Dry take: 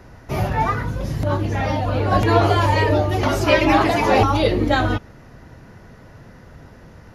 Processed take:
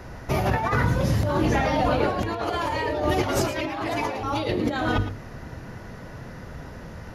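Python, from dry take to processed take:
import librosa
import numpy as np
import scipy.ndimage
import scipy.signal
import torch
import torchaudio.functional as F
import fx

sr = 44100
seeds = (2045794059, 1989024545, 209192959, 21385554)

p1 = fx.hum_notches(x, sr, base_hz=50, count=9)
p2 = fx.over_compress(p1, sr, threshold_db=-25.0, ratio=-1.0)
y = p2 + fx.echo_single(p2, sr, ms=112, db=-12.0, dry=0)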